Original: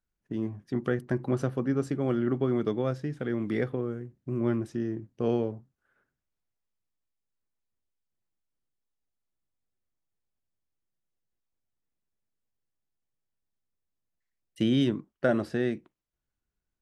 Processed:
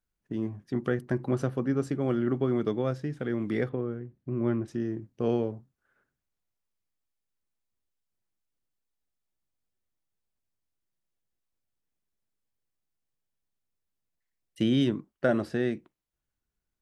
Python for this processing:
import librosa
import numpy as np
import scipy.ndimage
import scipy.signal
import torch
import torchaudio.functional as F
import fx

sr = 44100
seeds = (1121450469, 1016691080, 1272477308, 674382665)

y = fx.air_absorb(x, sr, metres=160.0, at=(3.69, 4.68))